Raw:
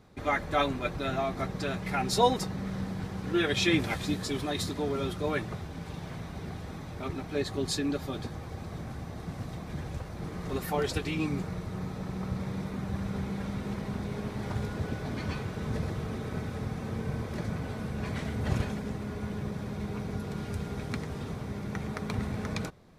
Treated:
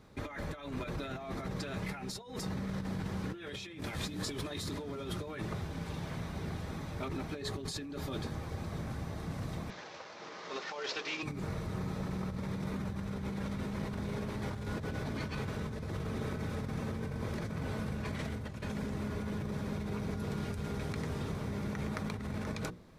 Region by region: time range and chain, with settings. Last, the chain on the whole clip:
0:09.70–0:11.23: variable-slope delta modulation 32 kbit/s + high-pass filter 570 Hz
whole clip: mains-hum notches 60/120/180/240/300/360/420/480 Hz; compressor whose output falls as the input rises −36 dBFS, ratio −1; notch filter 740 Hz, Q 12; level −2 dB

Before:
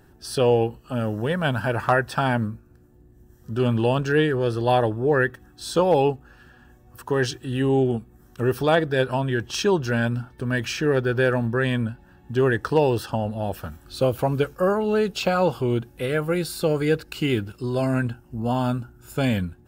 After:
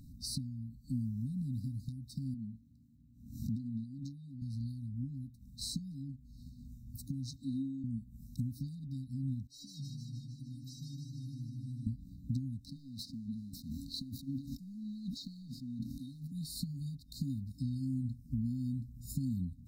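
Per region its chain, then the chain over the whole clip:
0:02.34–0:04.42: high-pass filter 69 Hz + bass and treble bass −12 dB, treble −12 dB + background raised ahead of every attack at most 84 dB per second
0:07.36–0:07.84: three-way crossover with the lows and the highs turned down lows −16 dB, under 280 Hz, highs −14 dB, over 5,900 Hz + multiband upward and downward compressor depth 40%
0:09.47–0:11.87: stiff-string resonator 140 Hz, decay 0.58 s, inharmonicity 0.008 + downward compressor 3 to 1, threshold −42 dBFS + feedback echo with a swinging delay time 153 ms, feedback 68%, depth 72 cents, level −3.5 dB
0:12.65–0:16.32: three-way crossover with the lows and the highs turned down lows −17 dB, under 230 Hz, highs −13 dB, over 4,900 Hz + leveller curve on the samples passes 1 + level that may fall only so fast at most 48 dB per second
whole clip: downward compressor 10 to 1, threshold −34 dBFS; high-shelf EQ 2,700 Hz −7 dB; brick-wall band-stop 290–3,700 Hz; level +3 dB

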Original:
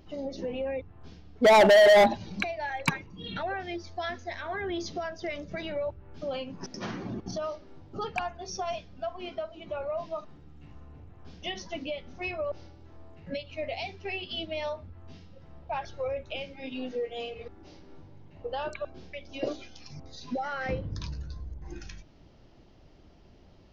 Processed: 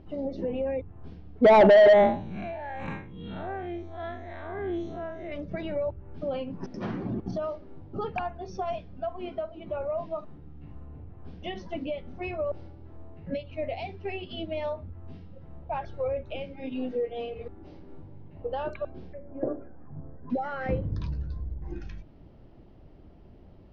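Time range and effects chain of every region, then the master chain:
0:01.93–0:05.32: spectrum smeared in time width 134 ms + Butterworth band-reject 4,900 Hz, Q 2.8
0:19.13–0:20.30: Chebyshev low-pass filter 1,700 Hz, order 5 + hum removal 71.33 Hz, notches 35
whole clip: low-pass filter 3,400 Hz 12 dB per octave; tilt shelving filter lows +5 dB

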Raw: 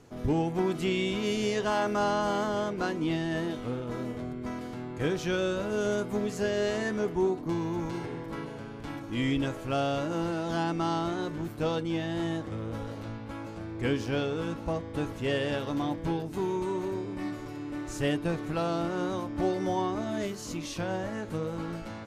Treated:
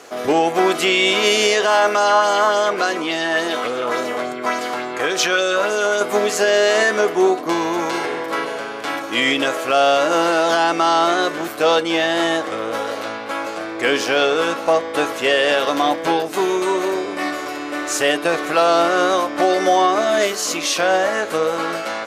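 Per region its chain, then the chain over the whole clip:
0:01.88–0:06.01: downward compressor, threshold −30 dBFS + auto-filter bell 3.5 Hz 890–7,800 Hz +7 dB
whole clip: Chebyshev high-pass filter 670 Hz, order 2; notch filter 910 Hz, Q 5.9; boost into a limiter +26 dB; level −5 dB

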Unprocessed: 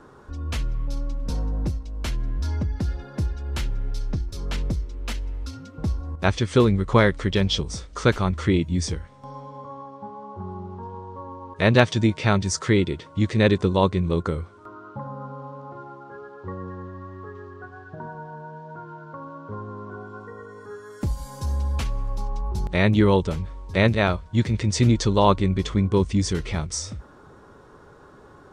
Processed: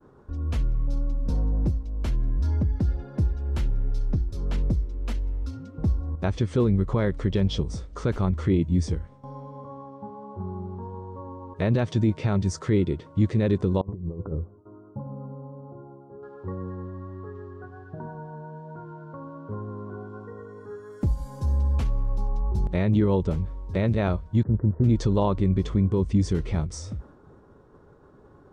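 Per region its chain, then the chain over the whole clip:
0:13.81–0:16.23: Gaussian smoothing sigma 9 samples + tuned comb filter 100 Hz, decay 0.3 s, mix 50% + compressor whose output falls as the input rises −31 dBFS, ratio −0.5
0:24.43–0:24.84: Butterworth low-pass 1,600 Hz 72 dB per octave + noise gate −31 dBFS, range −8 dB
whole clip: downward expander −44 dBFS; tilt shelving filter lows +6.5 dB; brickwall limiter −8.5 dBFS; level −4.5 dB

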